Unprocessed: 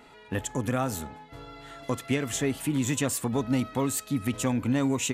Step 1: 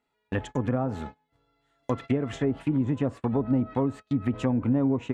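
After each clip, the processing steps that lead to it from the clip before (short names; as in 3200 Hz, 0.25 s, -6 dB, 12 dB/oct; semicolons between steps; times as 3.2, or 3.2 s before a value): treble ducked by the level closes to 760 Hz, closed at -22.5 dBFS; gate -38 dBFS, range -28 dB; gain +2 dB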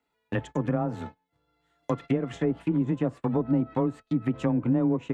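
frequency shift +17 Hz; transient shaper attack 0 dB, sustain -4 dB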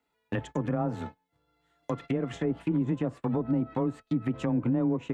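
limiter -19 dBFS, peak gain reduction 5.5 dB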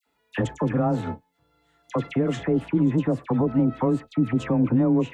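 dispersion lows, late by 64 ms, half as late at 1500 Hz; gain +6.5 dB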